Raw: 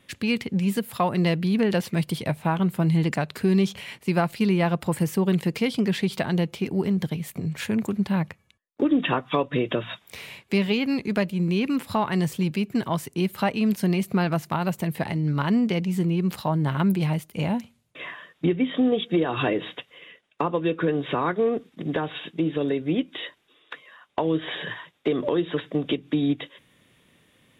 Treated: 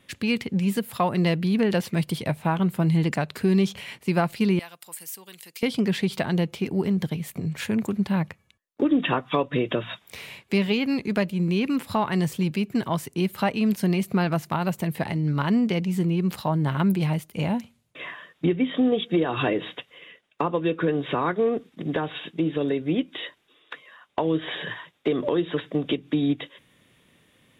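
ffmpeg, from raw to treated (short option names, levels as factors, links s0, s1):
-filter_complex "[0:a]asettb=1/sr,asplit=3[s0][s1][s2];[s0]atrim=end=4.594[s3];[s1]atrim=start=4.59:end=5.63,asetpts=PTS-STARTPTS,afade=t=in:d=0.004:c=qsin,afade=t=out:st=1.036:d=0.004:c=qsin,aderivative[s4];[s2]atrim=start=5.626[s5];[s3][s4]acrossfade=d=0.004:c1=hsin:c2=qsin[s6];[s6][s5]acrossfade=d=0.004:c1=qsin:c2=hsin"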